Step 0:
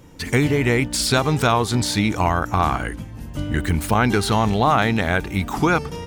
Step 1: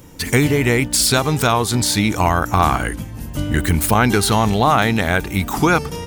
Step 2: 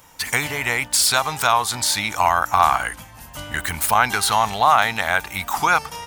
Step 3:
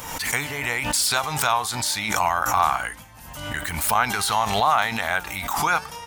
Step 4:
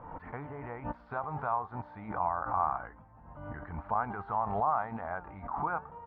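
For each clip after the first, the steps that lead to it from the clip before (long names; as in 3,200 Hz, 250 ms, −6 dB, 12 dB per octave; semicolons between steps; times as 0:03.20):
high-shelf EQ 7,900 Hz +11.5 dB; speech leveller within 4 dB 2 s; level +2 dB
low shelf with overshoot 550 Hz −13.5 dB, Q 1.5; level −1 dB
flanger 1 Hz, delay 4 ms, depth 3.7 ms, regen +85%; background raised ahead of every attack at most 49 dB per second
low-pass filter 1,200 Hz 24 dB per octave; level −8.5 dB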